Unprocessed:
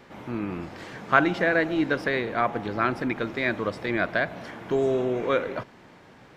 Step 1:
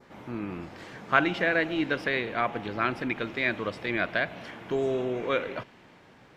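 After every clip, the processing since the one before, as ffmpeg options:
-af "adynamicequalizer=threshold=0.00631:dfrequency=2800:dqfactor=1.5:tfrequency=2800:tqfactor=1.5:attack=5:release=100:ratio=0.375:range=4:mode=boostabove:tftype=bell,volume=0.631"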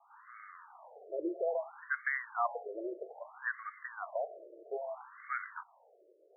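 -af "afftfilt=real='re*between(b*sr/1024,450*pow(1600/450,0.5+0.5*sin(2*PI*0.61*pts/sr))/1.41,450*pow(1600/450,0.5+0.5*sin(2*PI*0.61*pts/sr))*1.41)':imag='im*between(b*sr/1024,450*pow(1600/450,0.5+0.5*sin(2*PI*0.61*pts/sr))/1.41,450*pow(1600/450,0.5+0.5*sin(2*PI*0.61*pts/sr))*1.41)':win_size=1024:overlap=0.75,volume=0.708"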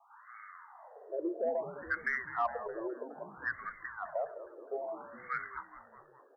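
-filter_complex "[0:a]asplit=7[s0][s1][s2][s3][s4][s5][s6];[s1]adelay=207,afreqshift=-88,volume=0.2[s7];[s2]adelay=414,afreqshift=-176,volume=0.12[s8];[s3]adelay=621,afreqshift=-264,volume=0.0716[s9];[s4]adelay=828,afreqshift=-352,volume=0.0432[s10];[s5]adelay=1035,afreqshift=-440,volume=0.026[s11];[s6]adelay=1242,afreqshift=-528,volume=0.0155[s12];[s0][s7][s8][s9][s10][s11][s12]amix=inputs=7:normalize=0,aeval=exprs='0.1*(cos(1*acos(clip(val(0)/0.1,-1,1)))-cos(1*PI/2))+0.00251*(cos(5*acos(clip(val(0)/0.1,-1,1)))-cos(5*PI/2))':c=same"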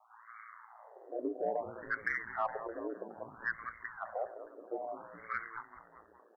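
-af "aeval=exprs='val(0)*sin(2*PI*57*n/s)':c=same,volume=1.19"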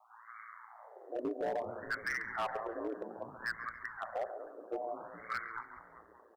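-filter_complex "[0:a]aecho=1:1:139|278|417|556:0.211|0.0867|0.0355|0.0146,acrossover=split=160[s0][s1];[s1]asoftclip=type=hard:threshold=0.0282[s2];[s0][s2]amix=inputs=2:normalize=0,volume=1.12"

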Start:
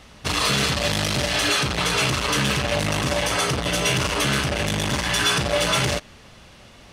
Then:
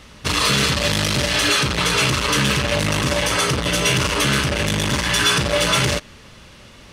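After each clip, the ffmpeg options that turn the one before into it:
-af "equalizer=f=730:t=o:w=0.31:g=-7.5,volume=1.5"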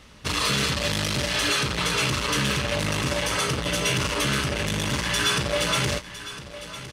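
-af "aecho=1:1:1007:0.2,volume=0.501"

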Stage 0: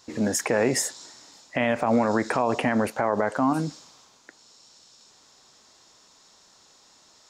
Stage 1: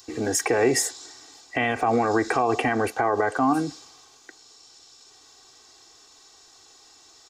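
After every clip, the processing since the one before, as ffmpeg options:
-filter_complex "[0:a]aecho=1:1:2.6:0.8,acrossover=split=170|1400|3200[s0][s1][s2][s3];[s3]acompressor=mode=upward:threshold=0.00355:ratio=2.5[s4];[s0][s1][s2][s4]amix=inputs=4:normalize=0"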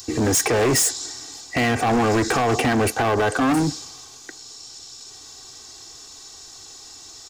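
-af "bass=f=250:g=9,treble=f=4000:g=7,volume=13.3,asoftclip=hard,volume=0.075,volume=2"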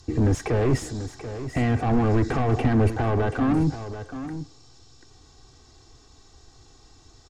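-af "aemphasis=mode=reproduction:type=riaa,aecho=1:1:736:0.266,volume=0.398"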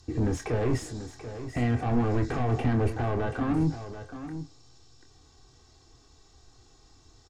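-filter_complex "[0:a]asplit=2[s0][s1];[s1]adelay=25,volume=0.398[s2];[s0][s2]amix=inputs=2:normalize=0,volume=0.531"

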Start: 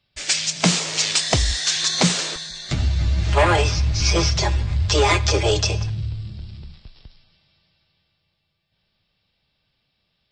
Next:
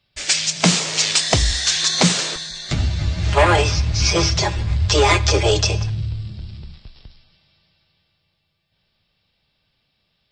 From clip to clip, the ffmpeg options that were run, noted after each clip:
-af "bandreject=f=65.57:t=h:w=4,bandreject=f=131.14:t=h:w=4,bandreject=f=196.71:t=h:w=4,bandreject=f=262.28:t=h:w=4,bandreject=f=327.85:t=h:w=4,volume=1.33"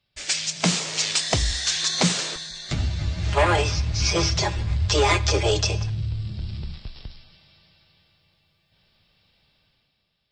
-af "dynaudnorm=f=120:g=11:m=3.55,volume=0.473"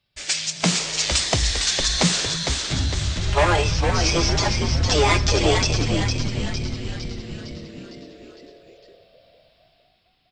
-filter_complex "[0:a]asplit=8[s0][s1][s2][s3][s4][s5][s6][s7];[s1]adelay=457,afreqshift=-110,volume=0.562[s8];[s2]adelay=914,afreqshift=-220,volume=0.316[s9];[s3]adelay=1371,afreqshift=-330,volume=0.176[s10];[s4]adelay=1828,afreqshift=-440,volume=0.0989[s11];[s5]adelay=2285,afreqshift=-550,volume=0.0556[s12];[s6]adelay=2742,afreqshift=-660,volume=0.0309[s13];[s7]adelay=3199,afreqshift=-770,volume=0.0174[s14];[s0][s8][s9][s10][s11][s12][s13][s14]amix=inputs=8:normalize=0,volume=1.12"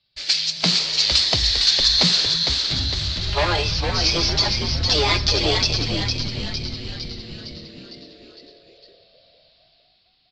-af "lowpass=f=4400:t=q:w=4.9,volume=0.668"

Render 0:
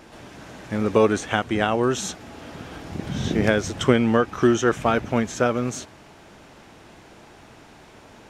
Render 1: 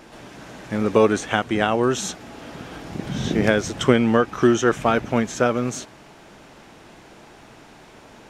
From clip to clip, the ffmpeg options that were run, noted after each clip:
-af "equalizer=f=82:t=o:w=0.4:g=-9.5,volume=1.19"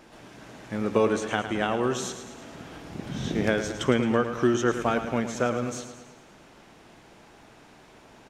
-af "aecho=1:1:109|218|327|436|545|654:0.316|0.174|0.0957|0.0526|0.0289|0.0159,volume=0.473"

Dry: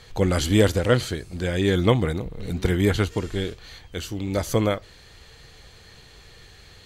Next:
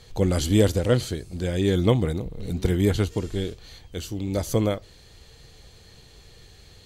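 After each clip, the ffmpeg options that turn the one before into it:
-af "equalizer=f=1600:t=o:w=1.9:g=-7.5"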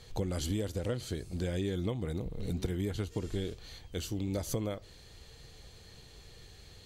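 -af "acompressor=threshold=0.0501:ratio=16,volume=0.668"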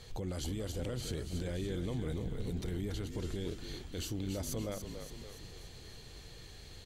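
-filter_complex "[0:a]alimiter=level_in=2.37:limit=0.0631:level=0:latency=1:release=28,volume=0.422,asplit=8[s0][s1][s2][s3][s4][s5][s6][s7];[s1]adelay=285,afreqshift=-46,volume=0.422[s8];[s2]adelay=570,afreqshift=-92,volume=0.24[s9];[s3]adelay=855,afreqshift=-138,volume=0.136[s10];[s4]adelay=1140,afreqshift=-184,volume=0.0785[s11];[s5]adelay=1425,afreqshift=-230,volume=0.0447[s12];[s6]adelay=1710,afreqshift=-276,volume=0.0254[s13];[s7]adelay=1995,afreqshift=-322,volume=0.0145[s14];[s0][s8][s9][s10][s11][s12][s13][s14]amix=inputs=8:normalize=0,volume=1.12"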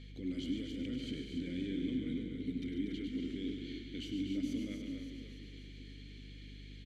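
-filter_complex "[0:a]asplit=3[s0][s1][s2];[s0]bandpass=f=270:t=q:w=8,volume=1[s3];[s1]bandpass=f=2290:t=q:w=8,volume=0.501[s4];[s2]bandpass=f=3010:t=q:w=8,volume=0.355[s5];[s3][s4][s5]amix=inputs=3:normalize=0,aecho=1:1:102|142.9|239.1:0.398|0.355|0.398,aeval=exprs='val(0)+0.00112*(sin(2*PI*50*n/s)+sin(2*PI*2*50*n/s)/2+sin(2*PI*3*50*n/s)/3+sin(2*PI*4*50*n/s)/4+sin(2*PI*5*50*n/s)/5)':c=same,volume=2.99"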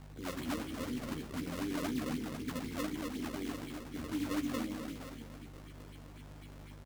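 -filter_complex "[0:a]acrusher=samples=32:mix=1:aa=0.000001:lfo=1:lforange=51.2:lforate=4,asplit=2[s0][s1];[s1]adelay=13,volume=0.596[s2];[s0][s2]amix=inputs=2:normalize=0"

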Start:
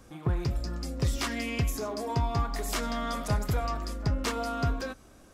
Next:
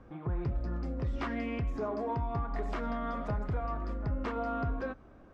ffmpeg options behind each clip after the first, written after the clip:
-af "lowpass=1600,alimiter=level_in=1.06:limit=0.0631:level=0:latency=1:release=171,volume=0.944"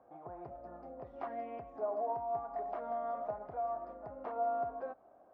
-af "bandpass=f=700:t=q:w=4.5:csg=0,volume=1.78"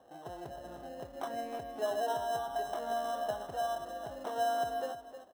-filter_complex "[0:a]asplit=2[s0][s1];[s1]acrusher=samples=19:mix=1:aa=0.000001,volume=0.501[s2];[s0][s2]amix=inputs=2:normalize=0,aecho=1:1:312:0.299"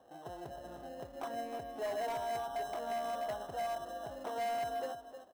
-af "asoftclip=type=hard:threshold=0.0266,volume=0.841"

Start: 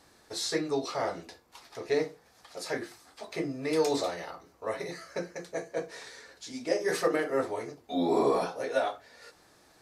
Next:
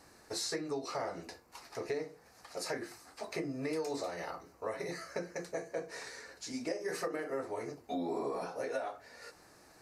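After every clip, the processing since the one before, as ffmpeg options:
-af "equalizer=f=3400:w=4.7:g=-11,acompressor=threshold=0.0178:ratio=6,volume=1.12"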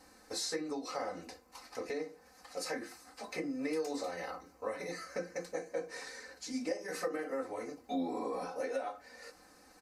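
-af "aecho=1:1:3.9:0.83,volume=0.75"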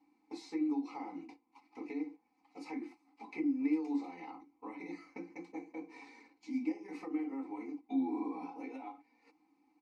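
-filter_complex "[0:a]agate=range=0.316:threshold=0.00355:ratio=16:detection=peak,asplit=3[s0][s1][s2];[s0]bandpass=f=300:t=q:w=8,volume=1[s3];[s1]bandpass=f=870:t=q:w=8,volume=0.501[s4];[s2]bandpass=f=2240:t=q:w=8,volume=0.355[s5];[s3][s4][s5]amix=inputs=3:normalize=0,volume=2.99"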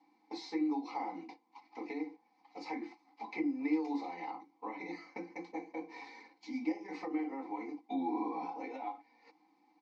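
-af "highpass=230,equalizer=f=270:t=q:w=4:g=-10,equalizer=f=400:t=q:w=4:g=-7,equalizer=f=1300:t=q:w=4:g=-7,equalizer=f=2600:t=q:w=4:g=-8,lowpass=f=5400:w=0.5412,lowpass=f=5400:w=1.3066,volume=2.51"

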